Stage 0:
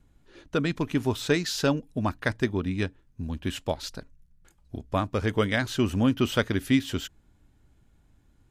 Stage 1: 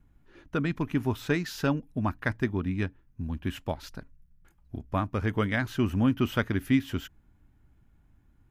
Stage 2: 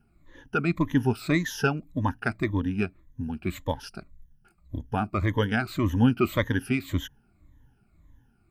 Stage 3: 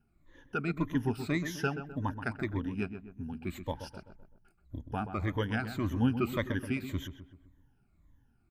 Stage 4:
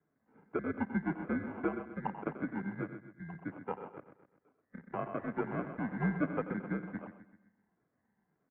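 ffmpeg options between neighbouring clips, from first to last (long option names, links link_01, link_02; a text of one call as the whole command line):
ffmpeg -i in.wav -af "equalizer=frequency=500:width_type=o:width=1:gain=-6,equalizer=frequency=4000:width_type=o:width=1:gain=-8,equalizer=frequency=8000:width_type=o:width=1:gain=-10" out.wav
ffmpeg -i in.wav -af "afftfilt=real='re*pow(10,17/40*sin(2*PI*(1.1*log(max(b,1)*sr/1024/100)/log(2)-(-1.8)*(pts-256)/sr)))':imag='im*pow(10,17/40*sin(2*PI*(1.1*log(max(b,1)*sr/1024/100)/log(2)-(-1.8)*(pts-256)/sr)))':win_size=1024:overlap=0.75" out.wav
ffmpeg -i in.wav -filter_complex "[0:a]asplit=2[link_01][link_02];[link_02]adelay=128,lowpass=frequency=1700:poles=1,volume=-9dB,asplit=2[link_03][link_04];[link_04]adelay=128,lowpass=frequency=1700:poles=1,volume=0.48,asplit=2[link_05][link_06];[link_06]adelay=128,lowpass=frequency=1700:poles=1,volume=0.48,asplit=2[link_07][link_08];[link_08]adelay=128,lowpass=frequency=1700:poles=1,volume=0.48,asplit=2[link_09][link_10];[link_10]adelay=128,lowpass=frequency=1700:poles=1,volume=0.48[link_11];[link_01][link_03][link_05][link_07][link_09][link_11]amix=inputs=6:normalize=0,volume=-7.5dB" out.wav
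ffmpeg -i in.wav -filter_complex "[0:a]asplit=2[link_01][link_02];[link_02]adelay=90,highpass=300,lowpass=3400,asoftclip=type=hard:threshold=-25dB,volume=-12dB[link_03];[link_01][link_03]amix=inputs=2:normalize=0,acrusher=samples=23:mix=1:aa=0.000001,highpass=frequency=260:width_type=q:width=0.5412,highpass=frequency=260:width_type=q:width=1.307,lowpass=frequency=2000:width_type=q:width=0.5176,lowpass=frequency=2000:width_type=q:width=0.7071,lowpass=frequency=2000:width_type=q:width=1.932,afreqshift=-74" out.wav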